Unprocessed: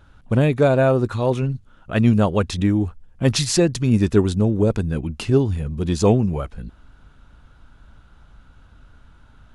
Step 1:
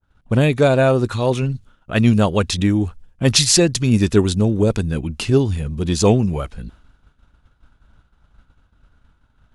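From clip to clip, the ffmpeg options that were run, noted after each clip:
-af "agate=range=0.0224:threshold=0.0112:ratio=3:detection=peak,adynamicequalizer=threshold=0.0126:dfrequency=2100:dqfactor=0.7:tfrequency=2100:tqfactor=0.7:attack=5:release=100:ratio=0.375:range=3.5:mode=boostabove:tftype=highshelf,volume=1.19"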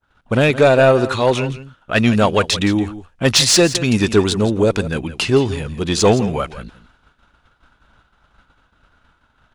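-filter_complex "[0:a]asplit=2[s0][s1];[s1]highpass=f=720:p=1,volume=5.01,asoftclip=type=tanh:threshold=0.891[s2];[s0][s2]amix=inputs=2:normalize=0,lowpass=f=4100:p=1,volume=0.501,aecho=1:1:168:0.188"

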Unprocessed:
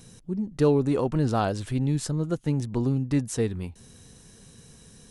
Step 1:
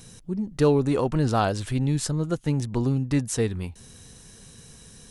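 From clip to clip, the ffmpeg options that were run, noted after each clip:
-af "equalizer=f=260:t=o:w=3:g=-4,volume=1.68"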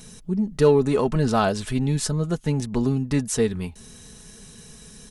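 -filter_complex "[0:a]aecho=1:1:4.7:0.48,asplit=2[s0][s1];[s1]asoftclip=type=tanh:threshold=0.141,volume=0.282[s2];[s0][s2]amix=inputs=2:normalize=0"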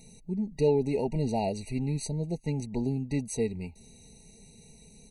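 -af "afftfilt=real='re*eq(mod(floor(b*sr/1024/950),2),0)':imag='im*eq(mod(floor(b*sr/1024/950),2),0)':win_size=1024:overlap=0.75,volume=0.422"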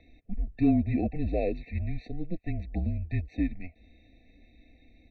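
-af "acontrast=29,highpass=f=150:t=q:w=0.5412,highpass=f=150:t=q:w=1.307,lowpass=f=3300:t=q:w=0.5176,lowpass=f=3300:t=q:w=0.7071,lowpass=f=3300:t=q:w=1.932,afreqshift=-170,volume=0.668"

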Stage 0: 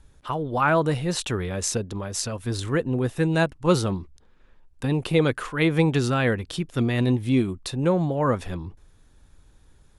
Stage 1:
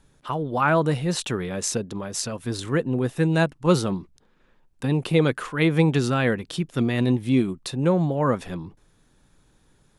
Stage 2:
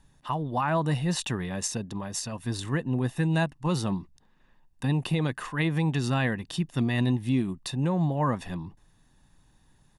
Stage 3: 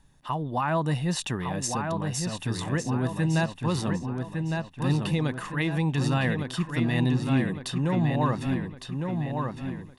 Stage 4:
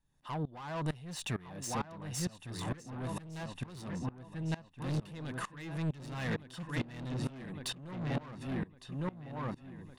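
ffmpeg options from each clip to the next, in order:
-af "lowshelf=f=110:t=q:w=1.5:g=-8"
-af "aecho=1:1:1.1:0.49,alimiter=limit=0.211:level=0:latency=1:release=161,volume=0.668"
-filter_complex "[0:a]asplit=2[s0][s1];[s1]adelay=1158,lowpass=f=4500:p=1,volume=0.596,asplit=2[s2][s3];[s3]adelay=1158,lowpass=f=4500:p=1,volume=0.48,asplit=2[s4][s5];[s5]adelay=1158,lowpass=f=4500:p=1,volume=0.48,asplit=2[s6][s7];[s7]adelay=1158,lowpass=f=4500:p=1,volume=0.48,asplit=2[s8][s9];[s9]adelay=1158,lowpass=f=4500:p=1,volume=0.48,asplit=2[s10][s11];[s11]adelay=1158,lowpass=f=4500:p=1,volume=0.48[s12];[s0][s2][s4][s6][s8][s10][s12]amix=inputs=7:normalize=0"
-af "asoftclip=type=tanh:threshold=0.0376,aeval=exprs='val(0)*pow(10,-22*if(lt(mod(-2.2*n/s,1),2*abs(-2.2)/1000),1-mod(-2.2*n/s,1)/(2*abs(-2.2)/1000),(mod(-2.2*n/s,1)-2*abs(-2.2)/1000)/(1-2*abs(-2.2)/1000))/20)':c=same,volume=1.12"

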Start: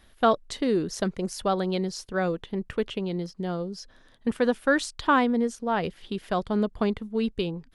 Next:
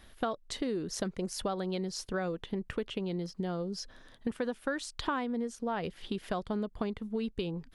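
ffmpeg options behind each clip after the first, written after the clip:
-af "acompressor=threshold=0.0224:ratio=5,volume=1.19"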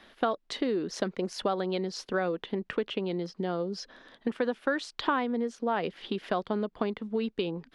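-filter_complex "[0:a]acrossover=split=190 5100:gain=0.112 1 0.141[s0][s1][s2];[s0][s1][s2]amix=inputs=3:normalize=0,volume=1.88"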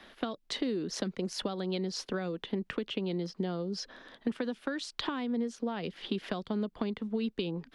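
-filter_complex "[0:a]acrossover=split=270|3000[s0][s1][s2];[s1]acompressor=threshold=0.0126:ratio=6[s3];[s0][s3][s2]amix=inputs=3:normalize=0,volume=1.19"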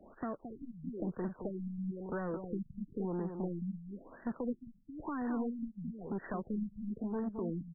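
-af "aresample=8000,asoftclip=type=tanh:threshold=0.0211,aresample=44100,aecho=1:1:220:0.447,afftfilt=real='re*lt(b*sr/1024,210*pow(2000/210,0.5+0.5*sin(2*PI*1*pts/sr)))':imag='im*lt(b*sr/1024,210*pow(2000/210,0.5+0.5*sin(2*PI*1*pts/sr)))':win_size=1024:overlap=0.75,volume=1.19"

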